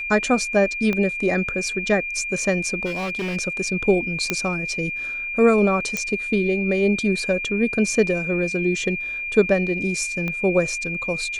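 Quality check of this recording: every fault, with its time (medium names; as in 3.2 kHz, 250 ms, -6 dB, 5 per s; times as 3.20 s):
whine 2.4 kHz -26 dBFS
0.93 s: pop -12 dBFS
2.85–3.37 s: clipped -23 dBFS
4.30 s: pop -6 dBFS
5.97 s: pop -10 dBFS
10.28 s: pop -15 dBFS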